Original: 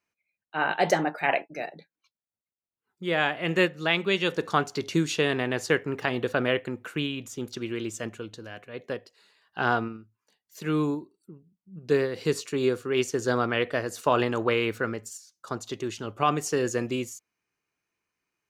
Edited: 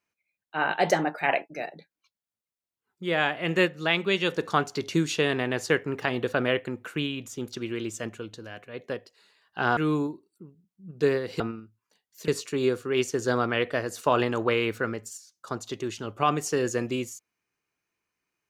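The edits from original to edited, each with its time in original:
0:09.77–0:10.65: move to 0:12.28

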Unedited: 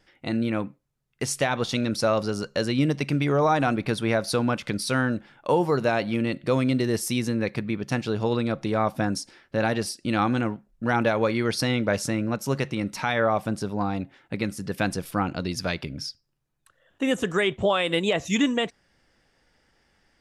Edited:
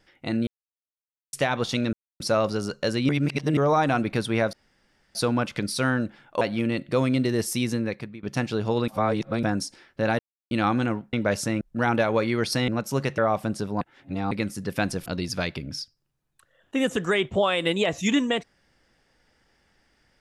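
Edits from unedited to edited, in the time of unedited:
0:00.47–0:01.33: silence
0:01.93: splice in silence 0.27 s
0:02.82–0:03.30: reverse
0:04.26: splice in room tone 0.62 s
0:05.52–0:05.96: remove
0:07.30–0:07.78: fade out, to −20.5 dB
0:08.43–0:08.98: reverse
0:09.74–0:10.06: silence
0:11.75–0:12.23: move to 0:10.68
0:12.73–0:13.20: remove
0:13.83–0:14.33: reverse
0:15.08–0:15.33: remove

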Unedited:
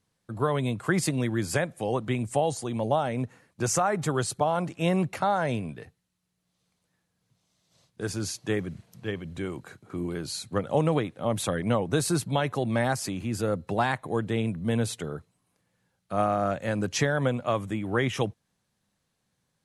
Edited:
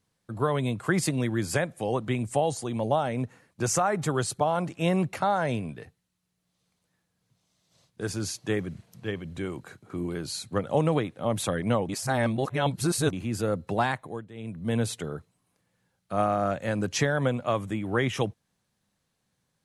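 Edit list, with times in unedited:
0:11.89–0:13.13: reverse
0:13.85–0:14.77: duck −17.5 dB, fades 0.43 s

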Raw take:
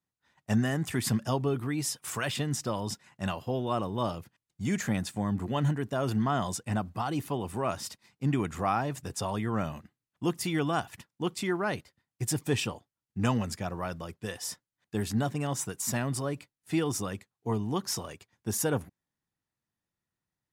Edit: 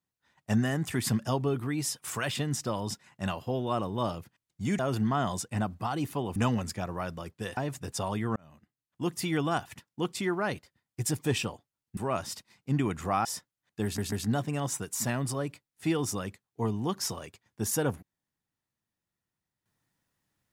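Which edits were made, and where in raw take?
0:04.79–0:05.94: remove
0:07.51–0:08.79: swap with 0:13.19–0:14.40
0:09.58–0:10.47: fade in
0:14.99: stutter 0.14 s, 3 plays

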